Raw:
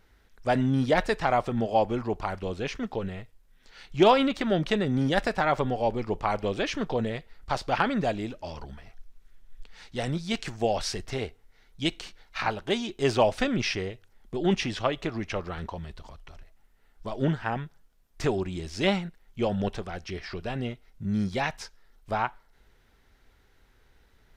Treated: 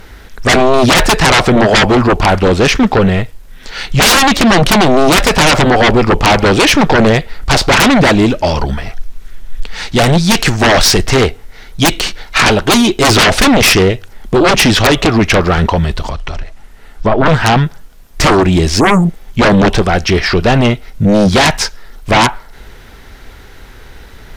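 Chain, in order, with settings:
0:18.82–0:19.26: healed spectral selection 900–6,700 Hz after
sine wavefolder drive 18 dB, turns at −9 dBFS
0:16.08–0:17.26: treble cut that deepens with the level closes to 2,000 Hz, closed at −12.5 dBFS
level +4.5 dB

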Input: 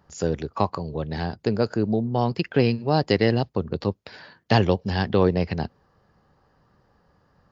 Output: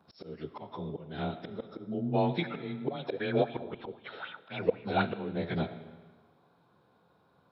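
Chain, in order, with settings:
partials spread apart or drawn together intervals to 92%
high-pass filter 150 Hz 12 dB per octave
downward compressor 6 to 1, threshold −22 dBFS, peak gain reduction 6.5 dB
volume swells 400 ms
convolution reverb RT60 1.3 s, pre-delay 30 ms, DRR 10.5 dB
0:02.88–0:05.02: auto-filter bell 3.9 Hz 420–3,000 Hz +14 dB

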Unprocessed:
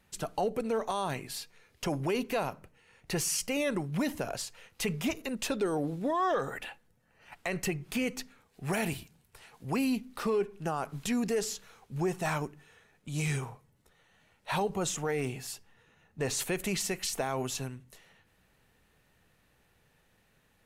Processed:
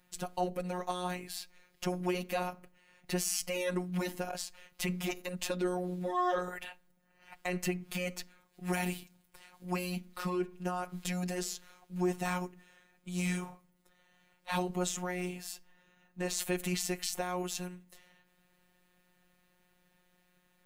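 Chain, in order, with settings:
phases set to zero 180 Hz

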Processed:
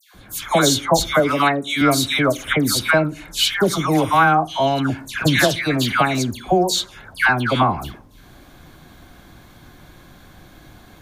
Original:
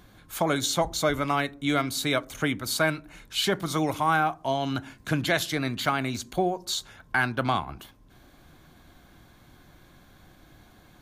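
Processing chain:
0:01.05–0:01.67: high-pass filter 160 Hz 12 dB per octave
all-pass dispersion lows, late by 147 ms, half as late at 1,700 Hz
level +9 dB

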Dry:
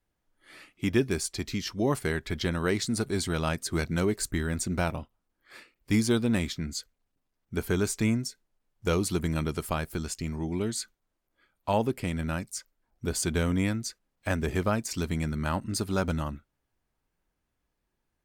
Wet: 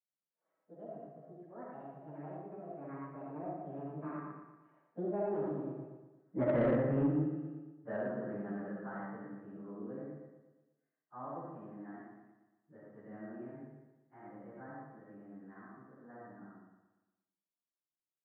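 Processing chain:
phase-vocoder pitch shift without resampling +6.5 semitones
source passing by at 0:06.40, 54 m/s, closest 10 metres
Chebyshev band-pass filter 140–1,700 Hz, order 4
on a send: repeating echo 117 ms, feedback 50%, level −8 dB
on the sum: convolution reverb RT60 0.70 s, pre-delay 20 ms, DRR −3.5 dB
in parallel at +1.5 dB: downward compressor, threshold −45 dBFS, peak gain reduction 17.5 dB
on the sum: soft clipping −24.5 dBFS, distortion −16 dB
level +1.5 dB

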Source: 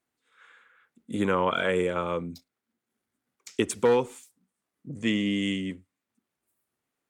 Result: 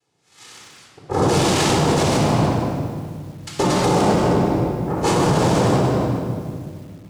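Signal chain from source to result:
cochlear-implant simulation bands 2
low-shelf EQ 340 Hz +5 dB
on a send: echo with a time of its own for lows and highs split 380 Hz, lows 194 ms, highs 85 ms, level −13 dB
on the sum: rectangular room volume 2,800 cubic metres, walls mixed, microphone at 4.1 metres
brickwall limiter −17 dBFS, peak gain reduction 15.5 dB
feedback echo at a low word length 153 ms, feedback 55%, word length 8 bits, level −11 dB
level +8 dB

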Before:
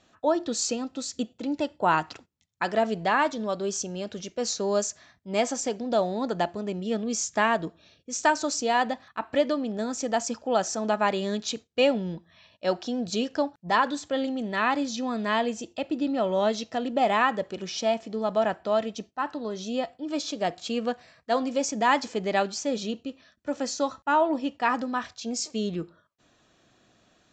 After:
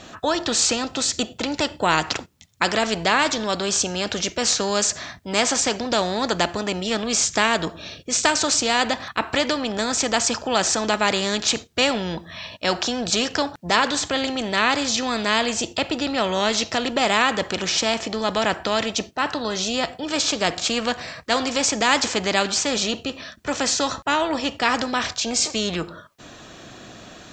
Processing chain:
every bin compressed towards the loudest bin 2 to 1
level +6 dB

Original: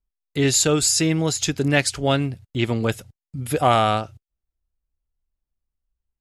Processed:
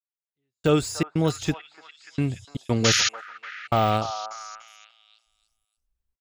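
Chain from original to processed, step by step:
de-essing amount 75%
gate pattern ".....xxx.xxx" 117 BPM −60 dB
sound drawn into the spectrogram noise, 0:02.84–0:03.09, 1,200–7,000 Hz −21 dBFS
on a send: echo through a band-pass that steps 293 ms, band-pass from 1,000 Hz, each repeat 0.7 octaves, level −7.5 dB

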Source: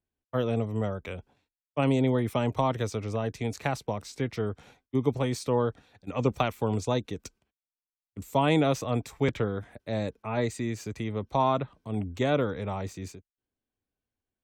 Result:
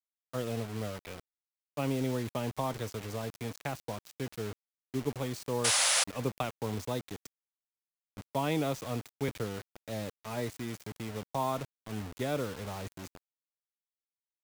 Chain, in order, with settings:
sound drawn into the spectrogram noise, 0:05.64–0:06.04, 500–11,000 Hz −19 dBFS
bit reduction 6 bits
level −7.5 dB

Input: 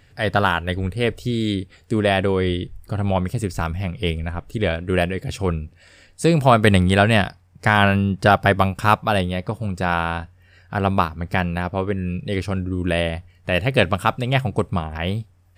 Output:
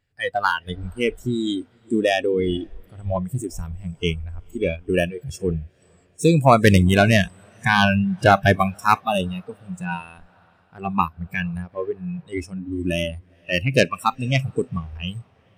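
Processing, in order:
phase distortion by the signal itself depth 0.062 ms
feedback delay with all-pass diffusion 465 ms, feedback 53%, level −14.5 dB
noise reduction from a noise print of the clip's start 22 dB
level +1 dB

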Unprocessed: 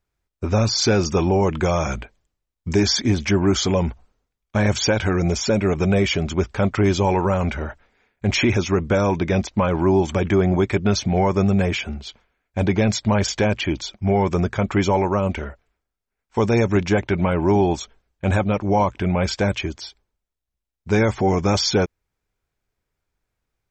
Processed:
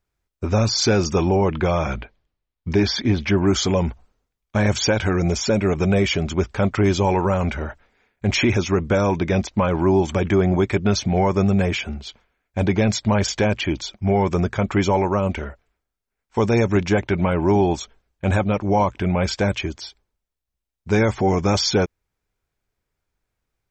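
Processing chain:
0:01.36–0:03.38: low-pass filter 4,700 Hz 24 dB per octave

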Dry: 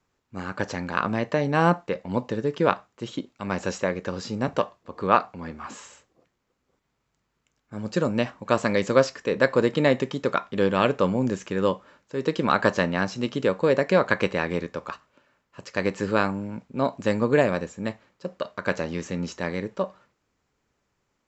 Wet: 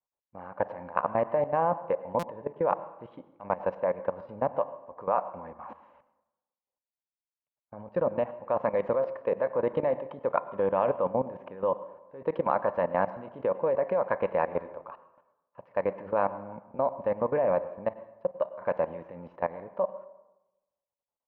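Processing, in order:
low-pass filter 2,300 Hz 24 dB per octave
noise gate with hold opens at −48 dBFS
flat-topped bell 730 Hz +13.5 dB 1.3 octaves
output level in coarse steps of 18 dB
convolution reverb RT60 1.0 s, pre-delay 88 ms, DRR 15.5 dB
buffer that repeats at 0:02.19, samples 256, times 6
level −6.5 dB

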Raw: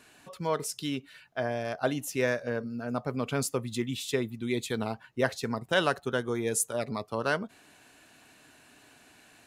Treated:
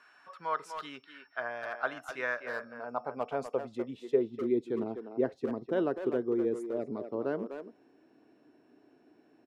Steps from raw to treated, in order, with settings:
steady tone 5,400 Hz −57 dBFS
band-pass filter sweep 1,300 Hz → 340 Hz, 0:02.33–0:04.54
far-end echo of a speakerphone 250 ms, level −7 dB
level +4.5 dB

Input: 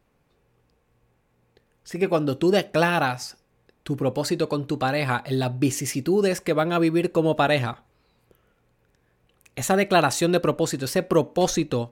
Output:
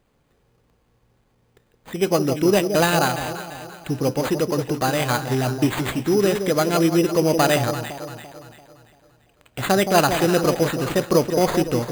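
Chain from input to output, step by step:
delay that swaps between a low-pass and a high-pass 170 ms, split 860 Hz, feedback 64%, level −7 dB
sample-rate reduction 5,500 Hz, jitter 0%
level +2 dB

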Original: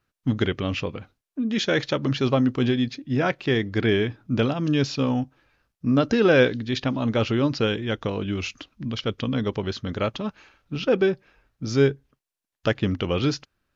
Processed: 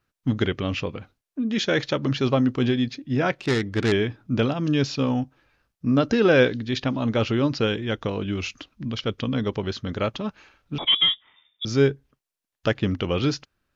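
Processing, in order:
0:03.37–0:03.92: phase distortion by the signal itself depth 0.18 ms
0:10.78–0:11.65: voice inversion scrambler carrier 3,600 Hz

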